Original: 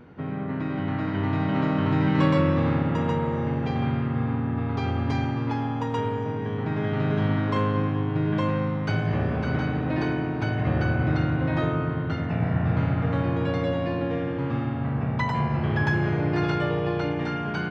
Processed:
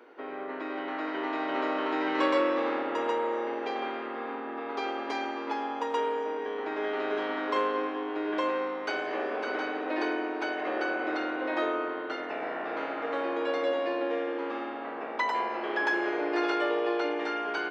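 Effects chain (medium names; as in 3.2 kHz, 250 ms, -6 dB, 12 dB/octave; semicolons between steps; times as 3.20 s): steep high-pass 330 Hz 36 dB/octave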